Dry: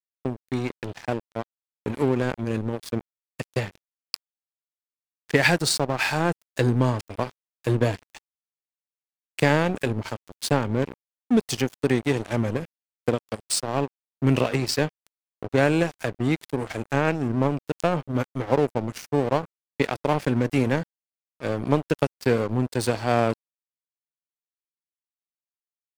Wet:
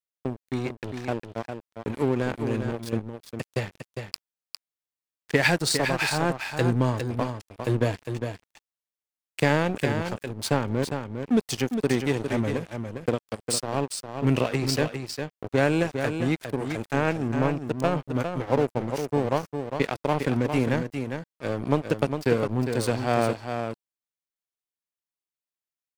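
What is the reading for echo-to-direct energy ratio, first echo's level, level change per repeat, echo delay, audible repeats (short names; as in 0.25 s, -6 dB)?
-7.0 dB, -7.0 dB, no steady repeat, 0.405 s, 1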